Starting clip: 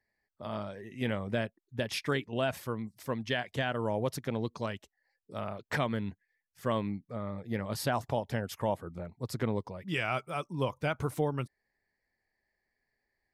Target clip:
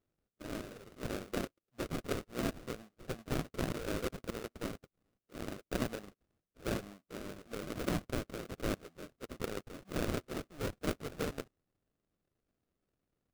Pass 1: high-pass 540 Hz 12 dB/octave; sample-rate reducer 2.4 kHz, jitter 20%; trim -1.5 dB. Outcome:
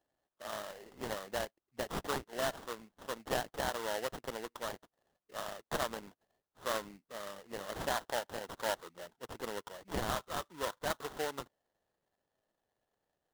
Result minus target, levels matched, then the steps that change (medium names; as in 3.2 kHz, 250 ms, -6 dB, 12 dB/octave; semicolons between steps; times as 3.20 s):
sample-rate reducer: distortion -16 dB
change: sample-rate reducer 920 Hz, jitter 20%